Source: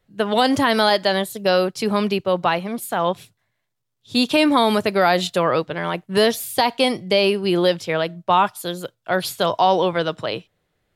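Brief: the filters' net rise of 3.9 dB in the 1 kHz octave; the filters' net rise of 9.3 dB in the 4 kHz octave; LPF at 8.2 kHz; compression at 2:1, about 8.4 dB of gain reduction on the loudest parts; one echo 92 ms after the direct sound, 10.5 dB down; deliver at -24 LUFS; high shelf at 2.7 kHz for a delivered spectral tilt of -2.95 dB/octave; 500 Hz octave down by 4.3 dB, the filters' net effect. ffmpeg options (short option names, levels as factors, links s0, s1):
-af "lowpass=8200,equalizer=f=500:t=o:g=-8,equalizer=f=1000:t=o:g=6.5,highshelf=f=2700:g=5.5,equalizer=f=4000:t=o:g=7,acompressor=threshold=0.0708:ratio=2,aecho=1:1:92:0.299,volume=0.841"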